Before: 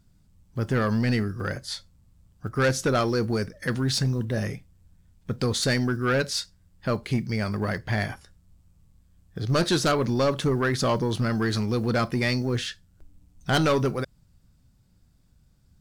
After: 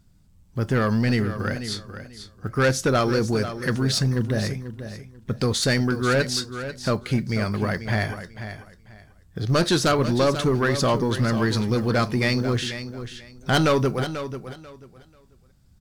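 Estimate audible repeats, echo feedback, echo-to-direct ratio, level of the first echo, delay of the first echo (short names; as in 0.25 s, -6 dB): 2, 22%, -11.0 dB, -11.0 dB, 0.49 s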